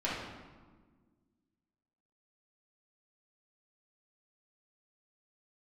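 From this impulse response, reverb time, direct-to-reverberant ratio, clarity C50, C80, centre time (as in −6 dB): 1.5 s, −8.5 dB, 0.0 dB, 3.5 dB, 75 ms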